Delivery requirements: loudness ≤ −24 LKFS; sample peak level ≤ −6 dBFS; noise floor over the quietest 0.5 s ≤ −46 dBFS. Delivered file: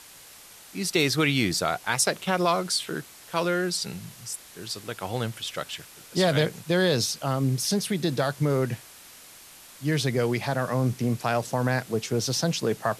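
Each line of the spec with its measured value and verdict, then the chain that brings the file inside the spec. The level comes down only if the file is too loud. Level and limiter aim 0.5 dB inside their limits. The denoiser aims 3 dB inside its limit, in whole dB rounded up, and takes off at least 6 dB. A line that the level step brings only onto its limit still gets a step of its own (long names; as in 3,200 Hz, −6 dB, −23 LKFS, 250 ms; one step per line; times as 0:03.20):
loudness −26.5 LKFS: in spec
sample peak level −9.5 dBFS: in spec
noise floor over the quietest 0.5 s −49 dBFS: in spec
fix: no processing needed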